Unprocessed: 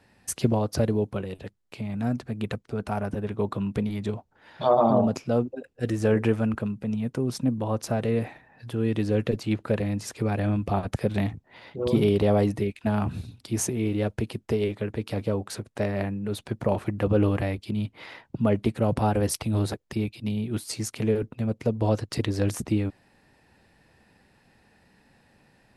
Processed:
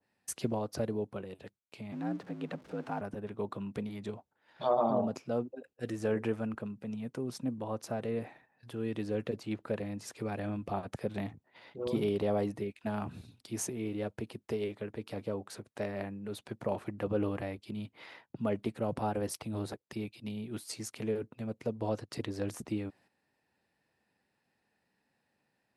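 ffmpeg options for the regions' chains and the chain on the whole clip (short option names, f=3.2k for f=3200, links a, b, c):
-filter_complex "[0:a]asettb=1/sr,asplit=3[a][b][c];[a]atrim=end=1.924[d];[b]atrim=start=1.92:end=3.01,asetpts=PTS-STARTPTS,afade=t=in:d=0.004:c=qsin,afade=t=out:st=1.086:d=0.004:c=qsin,aeval=exprs='val(0)+0.5*0.00944*sgn(val(0))':c=same,aemphasis=mode=reproduction:type=50fm,afreqshift=52[e];[c]atrim=start=3.006[f];[d][e]acrossfade=d=0.004:c1=hsin:c2=qsin[g];[g][f]acrossfade=d=0.004:c1=qsin:c2=hsin,agate=range=-9dB:threshold=-50dB:ratio=16:detection=peak,highpass=f=210:p=1,adynamicequalizer=threshold=0.00708:dfrequency=1600:dqfactor=0.7:tfrequency=1600:tqfactor=0.7:attack=5:release=100:ratio=0.375:range=2:mode=cutabove:tftype=highshelf,volume=-7.5dB"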